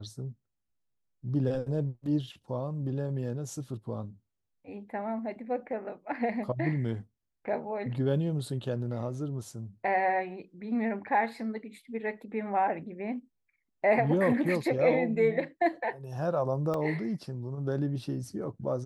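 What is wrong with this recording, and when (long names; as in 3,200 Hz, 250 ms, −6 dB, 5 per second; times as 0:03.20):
0:16.74: drop-out 2 ms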